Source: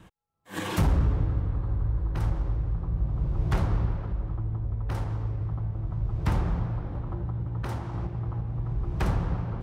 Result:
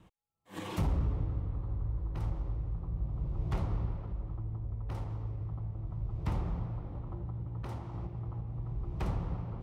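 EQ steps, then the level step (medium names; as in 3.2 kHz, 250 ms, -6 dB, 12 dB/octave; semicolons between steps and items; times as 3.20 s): peaking EQ 1.6 kHz -8 dB 0.33 oct; treble shelf 4.4 kHz -5 dB; -7.5 dB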